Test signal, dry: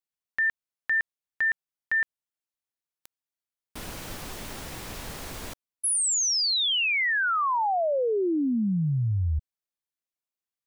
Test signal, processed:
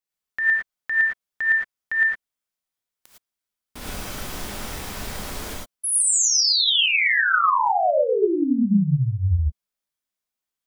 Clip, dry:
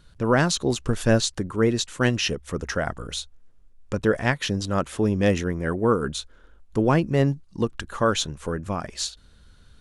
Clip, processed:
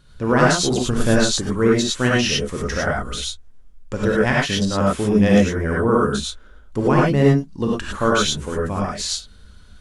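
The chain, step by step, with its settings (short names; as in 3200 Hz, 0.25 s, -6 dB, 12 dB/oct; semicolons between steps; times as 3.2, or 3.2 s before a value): non-linear reverb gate 0.13 s rising, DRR -4 dB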